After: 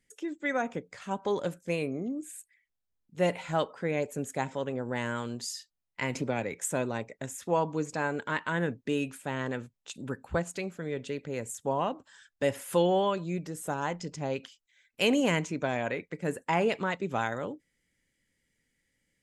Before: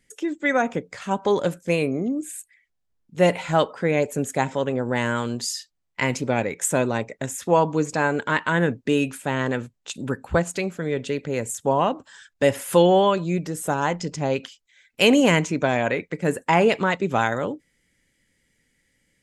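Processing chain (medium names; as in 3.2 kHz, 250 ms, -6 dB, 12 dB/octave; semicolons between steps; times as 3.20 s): 6.15–6.60 s: three bands compressed up and down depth 70%; trim -9 dB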